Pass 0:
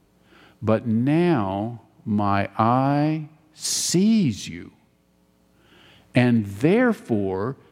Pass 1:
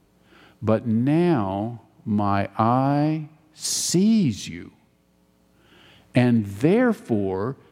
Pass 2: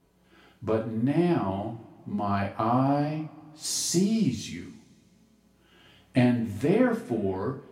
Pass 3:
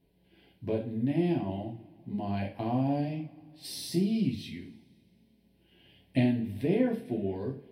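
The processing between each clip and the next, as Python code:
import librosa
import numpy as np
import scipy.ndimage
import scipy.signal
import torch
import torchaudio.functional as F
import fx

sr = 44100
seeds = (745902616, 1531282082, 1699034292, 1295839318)

y1 = fx.dynamic_eq(x, sr, hz=2200.0, q=0.94, threshold_db=-35.0, ratio=4.0, max_db=-4)
y2 = fx.rev_double_slope(y1, sr, seeds[0], early_s=0.34, late_s=2.7, knee_db=-27, drr_db=-2.0)
y2 = F.gain(torch.from_numpy(y2), -8.5).numpy()
y3 = fx.fixed_phaser(y2, sr, hz=3000.0, stages=4)
y3 = F.gain(torch.from_numpy(y3), -3.0).numpy()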